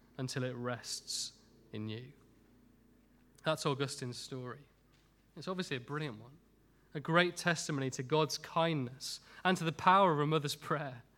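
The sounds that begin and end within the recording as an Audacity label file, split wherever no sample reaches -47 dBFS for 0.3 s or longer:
1.730000	2.100000	sound
3.390000	4.560000	sound
5.370000	6.270000	sound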